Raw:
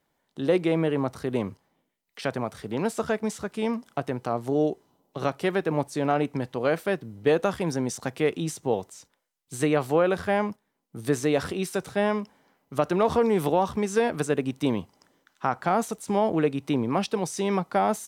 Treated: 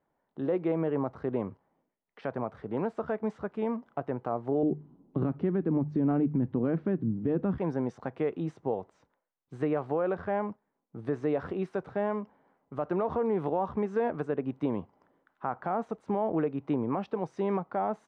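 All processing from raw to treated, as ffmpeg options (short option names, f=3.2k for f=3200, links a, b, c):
-filter_complex "[0:a]asettb=1/sr,asplit=3[a][b][c];[a]atrim=end=4.634[d];[b]atrim=start=4.63:end=7.58,asetpts=PTS-STARTPTS,afade=t=in:d=0.004:c=qsin,afade=t=out:st=2.946:d=0.004:c=qsin,lowpass=4.8k,lowshelf=f=400:t=q:w=1.5:g=13.5,bandreject=f=50:t=h:w=6,bandreject=f=100:t=h:w=6,bandreject=f=150:t=h:w=6[e];[c]atrim=start=7.576[f];[d][e]acrossfade=d=0.004:c1=hsin:c2=qsin[g];[g][f]acrossfade=d=0.004:c1=qsin:c2=hsin,lowpass=1.2k,lowshelf=f=340:g=-5,alimiter=limit=-19.5dB:level=0:latency=1:release=147"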